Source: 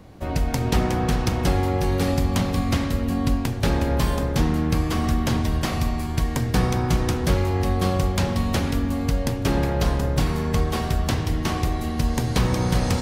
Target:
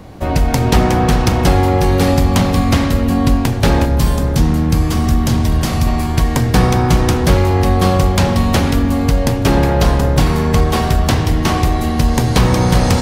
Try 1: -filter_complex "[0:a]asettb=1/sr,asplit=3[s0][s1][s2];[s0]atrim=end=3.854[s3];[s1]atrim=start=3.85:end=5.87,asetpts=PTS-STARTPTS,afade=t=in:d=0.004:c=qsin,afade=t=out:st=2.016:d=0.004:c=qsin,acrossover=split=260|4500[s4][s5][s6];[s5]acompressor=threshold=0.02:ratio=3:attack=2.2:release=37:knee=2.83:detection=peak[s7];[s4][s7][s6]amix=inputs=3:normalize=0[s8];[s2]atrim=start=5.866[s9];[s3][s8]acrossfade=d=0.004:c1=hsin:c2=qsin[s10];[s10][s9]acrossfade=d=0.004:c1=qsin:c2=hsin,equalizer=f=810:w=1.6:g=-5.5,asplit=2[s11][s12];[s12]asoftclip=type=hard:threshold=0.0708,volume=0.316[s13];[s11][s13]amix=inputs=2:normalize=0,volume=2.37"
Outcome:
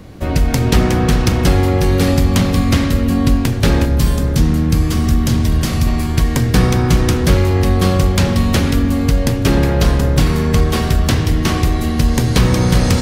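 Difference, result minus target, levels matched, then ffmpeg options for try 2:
1 kHz band -5.0 dB
-filter_complex "[0:a]asettb=1/sr,asplit=3[s0][s1][s2];[s0]atrim=end=3.854[s3];[s1]atrim=start=3.85:end=5.87,asetpts=PTS-STARTPTS,afade=t=in:d=0.004:c=qsin,afade=t=out:st=2.016:d=0.004:c=qsin,acrossover=split=260|4500[s4][s5][s6];[s5]acompressor=threshold=0.02:ratio=3:attack=2.2:release=37:knee=2.83:detection=peak[s7];[s4][s7][s6]amix=inputs=3:normalize=0[s8];[s2]atrim=start=5.866[s9];[s3][s8]acrossfade=d=0.004:c1=hsin:c2=qsin[s10];[s10][s9]acrossfade=d=0.004:c1=qsin:c2=hsin,equalizer=f=810:w=1.6:g=2,asplit=2[s11][s12];[s12]asoftclip=type=hard:threshold=0.0708,volume=0.316[s13];[s11][s13]amix=inputs=2:normalize=0,volume=2.37"

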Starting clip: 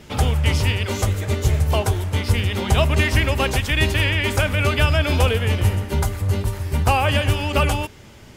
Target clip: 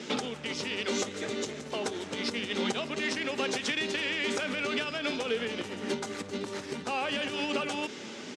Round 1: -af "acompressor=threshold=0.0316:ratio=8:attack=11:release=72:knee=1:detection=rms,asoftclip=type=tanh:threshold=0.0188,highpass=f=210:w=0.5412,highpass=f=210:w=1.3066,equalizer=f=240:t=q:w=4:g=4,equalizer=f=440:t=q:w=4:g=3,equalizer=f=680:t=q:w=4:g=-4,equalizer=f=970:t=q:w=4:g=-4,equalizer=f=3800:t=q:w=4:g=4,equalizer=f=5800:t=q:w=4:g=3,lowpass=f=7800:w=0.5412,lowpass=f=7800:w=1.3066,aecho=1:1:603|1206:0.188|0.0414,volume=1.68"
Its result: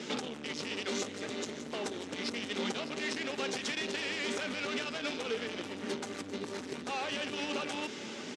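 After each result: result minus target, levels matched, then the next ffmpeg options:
saturation: distortion +12 dB; echo-to-direct +7 dB
-af "acompressor=threshold=0.0316:ratio=8:attack=11:release=72:knee=1:detection=rms,asoftclip=type=tanh:threshold=0.0631,highpass=f=210:w=0.5412,highpass=f=210:w=1.3066,equalizer=f=240:t=q:w=4:g=4,equalizer=f=440:t=q:w=4:g=3,equalizer=f=680:t=q:w=4:g=-4,equalizer=f=970:t=q:w=4:g=-4,equalizer=f=3800:t=q:w=4:g=4,equalizer=f=5800:t=q:w=4:g=3,lowpass=f=7800:w=0.5412,lowpass=f=7800:w=1.3066,aecho=1:1:603|1206:0.188|0.0414,volume=1.68"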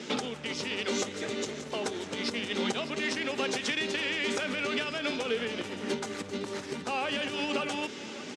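echo-to-direct +7 dB
-af "acompressor=threshold=0.0316:ratio=8:attack=11:release=72:knee=1:detection=rms,asoftclip=type=tanh:threshold=0.0631,highpass=f=210:w=0.5412,highpass=f=210:w=1.3066,equalizer=f=240:t=q:w=4:g=4,equalizer=f=440:t=q:w=4:g=3,equalizer=f=680:t=q:w=4:g=-4,equalizer=f=970:t=q:w=4:g=-4,equalizer=f=3800:t=q:w=4:g=4,equalizer=f=5800:t=q:w=4:g=3,lowpass=f=7800:w=0.5412,lowpass=f=7800:w=1.3066,aecho=1:1:603|1206:0.0841|0.0185,volume=1.68"

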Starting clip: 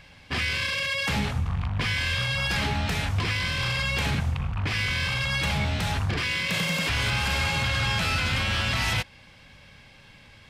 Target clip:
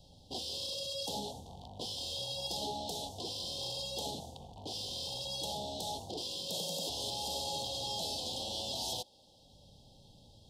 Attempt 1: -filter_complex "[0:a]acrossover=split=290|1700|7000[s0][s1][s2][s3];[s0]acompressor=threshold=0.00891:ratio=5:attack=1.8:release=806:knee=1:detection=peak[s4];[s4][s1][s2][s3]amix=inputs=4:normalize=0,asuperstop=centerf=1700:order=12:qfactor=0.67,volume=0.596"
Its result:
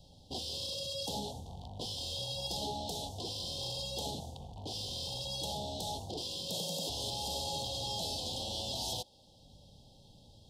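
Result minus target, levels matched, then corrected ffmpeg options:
compression: peak gain reduction -6.5 dB
-filter_complex "[0:a]acrossover=split=290|1700|7000[s0][s1][s2][s3];[s0]acompressor=threshold=0.00355:ratio=5:attack=1.8:release=806:knee=1:detection=peak[s4];[s4][s1][s2][s3]amix=inputs=4:normalize=0,asuperstop=centerf=1700:order=12:qfactor=0.67,volume=0.596"

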